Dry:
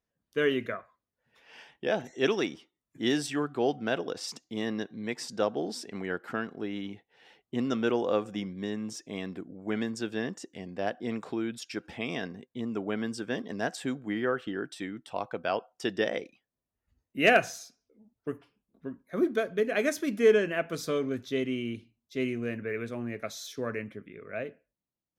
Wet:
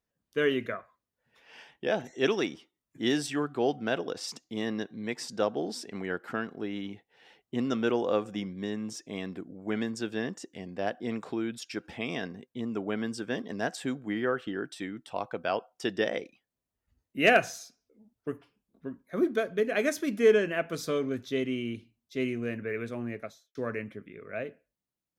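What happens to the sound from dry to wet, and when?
23.08–23.55 studio fade out

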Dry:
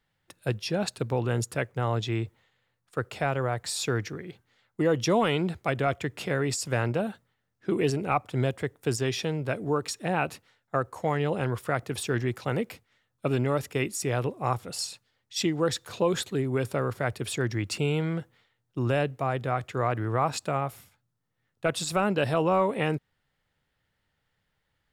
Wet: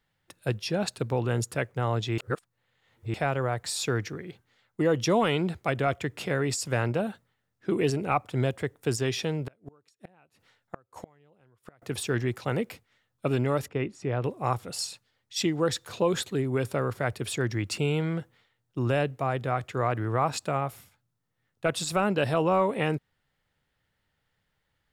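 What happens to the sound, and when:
2.18–3.14 reverse
9.45–11.82 flipped gate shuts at -24 dBFS, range -34 dB
13.68–14.24 tape spacing loss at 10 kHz 28 dB

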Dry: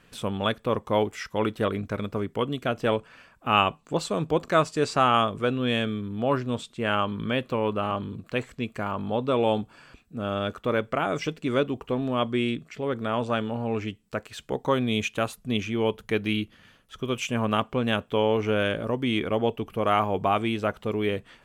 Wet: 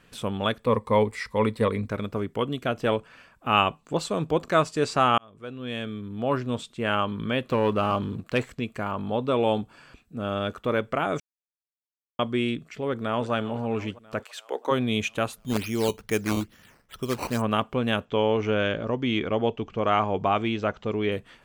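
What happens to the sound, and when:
0.65–1.89 ripple EQ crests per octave 0.95, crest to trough 10 dB
5.18–6.45 fade in
7.49–8.6 sample leveller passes 1
11.2–12.19 mute
12.86–13.32 echo throw 0.33 s, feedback 65%, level -16 dB
14.22–14.7 HPF 720 Hz -> 270 Hz 24 dB/oct
15.38–17.42 decimation with a swept rate 9× 2.3 Hz
18.05–21.12 steep low-pass 7300 Hz 72 dB/oct

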